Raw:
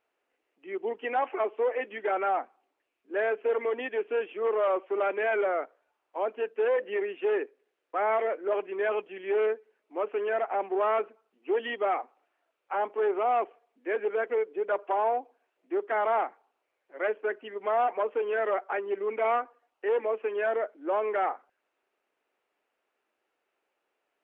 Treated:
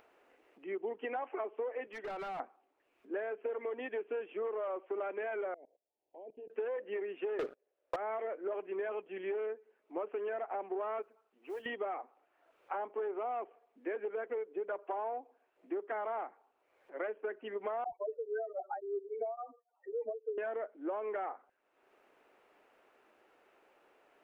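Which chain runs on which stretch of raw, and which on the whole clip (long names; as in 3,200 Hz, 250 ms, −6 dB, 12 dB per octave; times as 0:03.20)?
0:01.87–0:02.40: high-pass filter 460 Hz 6 dB per octave + downward compressor 16 to 1, threshold −33 dBFS + hard clipping −38.5 dBFS
0:05.54–0:06.50: output level in coarse steps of 23 dB + Butterworth band-reject 1,300 Hz, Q 0.92 + parametric band 2,100 Hz −12.5 dB 1.6 octaves
0:07.39–0:07.96: parametric band 580 Hz +14.5 dB 0.51 octaves + leveller curve on the samples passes 5
0:11.02–0:11.66: low-shelf EQ 340 Hz −9.5 dB + downward compressor 1.5 to 1, threshold −59 dBFS + noise that follows the level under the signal 21 dB
0:17.84–0:20.38: expanding power law on the bin magnitudes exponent 3.3 + all-pass dispersion lows, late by 85 ms, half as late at 370 Hz + tremolo along a rectified sine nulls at 3.6 Hz
whole clip: downward compressor 10 to 1, threshold −35 dBFS; high-shelf EQ 2,600 Hz −10 dB; upward compression, threshold −55 dBFS; level +1 dB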